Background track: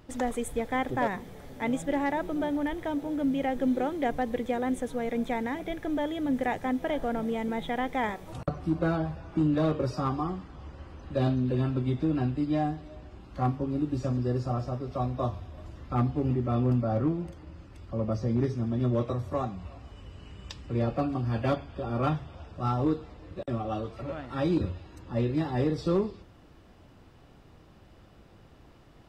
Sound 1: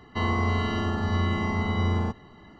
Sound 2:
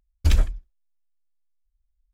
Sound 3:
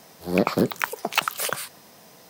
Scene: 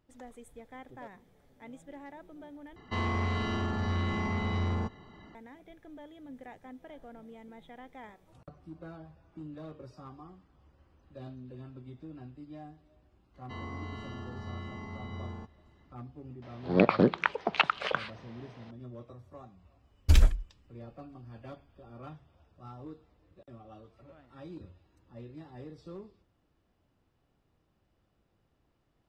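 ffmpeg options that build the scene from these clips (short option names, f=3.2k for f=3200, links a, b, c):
-filter_complex "[1:a]asplit=2[a][b];[0:a]volume=-19dB[c];[a]asoftclip=type=tanh:threshold=-22dB[d];[3:a]lowpass=f=3.5k:w=0.5412,lowpass=f=3.5k:w=1.3066[e];[c]asplit=2[f][g];[f]atrim=end=2.764[h];[d]atrim=end=2.59,asetpts=PTS-STARTPTS,volume=-3dB[i];[g]atrim=start=5.346[j];[b]atrim=end=2.59,asetpts=PTS-STARTPTS,volume=-16dB,afade=t=in:d=0.004:c=hsin,afade=t=out:st=2.586:d=0.004:c=hsin,adelay=13340[k];[e]atrim=end=2.29,asetpts=PTS-STARTPTS,volume=-2dB,afade=t=in:d=0.004:c=hsin,afade=t=out:st=2.286:d=0.004:c=hsin,adelay=16420[l];[2:a]atrim=end=2.13,asetpts=PTS-STARTPTS,volume=-2dB,afade=t=in:d=0.004:c=hsin,afade=t=out:st=2.126:d=0.004:c=hsin,adelay=19840[m];[h][i]acrossfade=d=0.004:c1=hsin:c2=hsin[n];[n][j]acrossfade=d=0.004:c1=hsin:c2=hsin[o];[o][k][l][m]amix=inputs=4:normalize=0"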